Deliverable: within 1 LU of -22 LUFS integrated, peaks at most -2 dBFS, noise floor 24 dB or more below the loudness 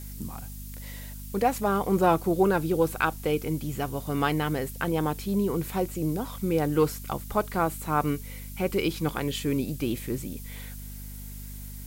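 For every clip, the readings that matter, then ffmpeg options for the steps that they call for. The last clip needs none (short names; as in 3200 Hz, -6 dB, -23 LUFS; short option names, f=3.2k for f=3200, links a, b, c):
hum 50 Hz; harmonics up to 250 Hz; hum level -37 dBFS; noise floor -40 dBFS; noise floor target -52 dBFS; loudness -27.5 LUFS; peak -9.5 dBFS; loudness target -22.0 LUFS
-> -af "bandreject=f=50:t=h:w=4,bandreject=f=100:t=h:w=4,bandreject=f=150:t=h:w=4,bandreject=f=200:t=h:w=4,bandreject=f=250:t=h:w=4"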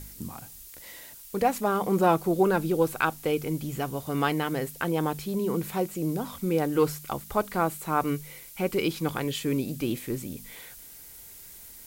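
hum none; noise floor -47 dBFS; noise floor target -52 dBFS
-> -af "afftdn=nr=6:nf=-47"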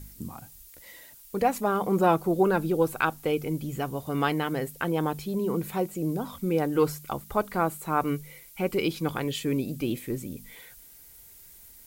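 noise floor -51 dBFS; noise floor target -52 dBFS
-> -af "afftdn=nr=6:nf=-51"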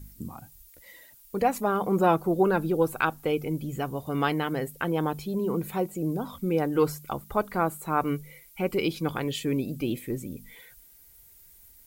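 noise floor -55 dBFS; loudness -28.0 LUFS; peak -9.5 dBFS; loudness target -22.0 LUFS
-> -af "volume=6dB"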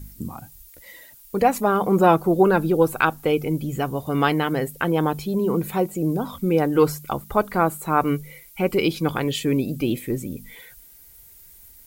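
loudness -22.0 LUFS; peak -3.5 dBFS; noise floor -49 dBFS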